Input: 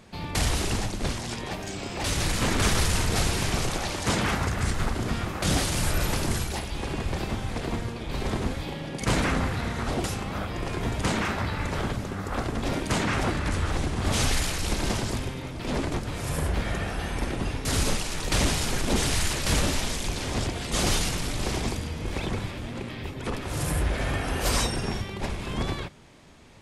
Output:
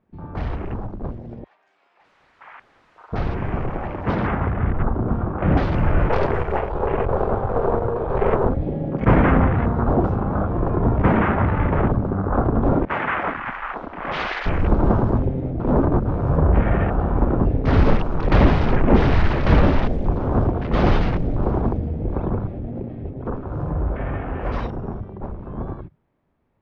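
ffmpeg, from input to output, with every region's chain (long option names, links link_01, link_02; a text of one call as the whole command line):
ffmpeg -i in.wav -filter_complex "[0:a]asettb=1/sr,asplit=3[link_01][link_02][link_03];[link_01]atrim=end=1.444[link_04];[link_02]atrim=start=1.44:end=3.13,asetpts=PTS-STARTPTS,afade=type=in:duration=0.004:curve=qsin,afade=type=out:start_time=1.686:duration=0.004:curve=qsin,highpass=1100,aeval=exprs='0.0355*(abs(mod(val(0)/0.0355+3,4)-2)-1)':channel_layout=same[link_05];[link_03]atrim=start=3.126[link_06];[link_04][link_05]acrossfade=duration=0.004:curve1=hsin:curve2=qsin[link_07];[link_07][link_06]acrossfade=duration=0.004:curve1=qsin:curve2=hsin,asettb=1/sr,asplit=3[link_08][link_09][link_10];[link_08]atrim=end=4.544[link_11];[link_09]atrim=start=4.54:end=5.57,asetpts=PTS-STARTPTS,afade=type=in:duration=0.004:curve=qsin,afade=type=out:start_time=1.026:duration=0.004:curve=qsin,acrossover=split=4000[link_12][link_13];[link_13]acompressor=threshold=-44dB:ratio=4:attack=1:release=60[link_14];[link_12][link_14]amix=inputs=2:normalize=0,highshelf=frequency=6300:gain=-8.5[link_15];[link_10]atrim=start=5.566[link_16];[link_11][link_15]acrossfade=duration=0.004:curve1=hsin:curve2=qsin[link_17];[link_17][link_16]acrossfade=duration=0.004:curve1=qsin:curve2=hsin,asettb=1/sr,asplit=3[link_18][link_19][link_20];[link_18]atrim=end=6.094[link_21];[link_19]atrim=start=6.09:end=8.49,asetpts=PTS-STARTPTS,afade=type=in:duration=0.004:curve=qsin,afade=type=out:start_time=2.396:duration=0.004:curve=qsin,lowshelf=frequency=350:width_type=q:width=3:gain=-6.5,acontrast=35,aeval=exprs='clip(val(0),-1,0.02)':channel_layout=same[link_22];[link_20]atrim=start=8.486[link_23];[link_21][link_22]acrossfade=duration=0.004:curve1=hsin:curve2=qsin[link_24];[link_24][link_23]acrossfade=duration=0.004:curve1=qsin:curve2=hsin,asettb=1/sr,asplit=3[link_25][link_26][link_27];[link_25]atrim=end=12.854[link_28];[link_26]atrim=start=12.85:end=14.46,asetpts=PTS-STARTPTS,afade=type=in:duration=0.004:curve=qsin,afade=type=out:start_time=1.606:duration=0.004:curve=qsin,bandpass=frequency=1800:width_type=q:width=0.75,afreqshift=-56,adynamicequalizer=threshold=0.00562:dfrequency=2500:dqfactor=0.7:tfrequency=2500:tqfactor=0.7:attack=5:release=100:ratio=0.375:range=3.5:mode=boostabove:tftype=highshelf[link_29];[link_27]atrim=start=14.456[link_30];[link_28][link_29]acrossfade=duration=0.004:curve1=hsin:curve2=qsin[link_31];[link_31][link_30]acrossfade=duration=0.004:curve1=qsin:curve2=hsin,afwtdn=0.0224,lowpass=1400,dynaudnorm=framelen=320:gausssize=31:maxgain=12.5dB" out.wav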